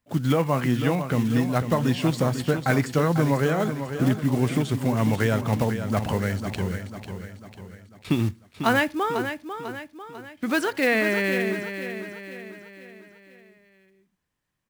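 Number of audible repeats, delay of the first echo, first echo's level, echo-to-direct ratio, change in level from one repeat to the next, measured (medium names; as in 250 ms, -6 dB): 5, 496 ms, -9.0 dB, -8.0 dB, -6.5 dB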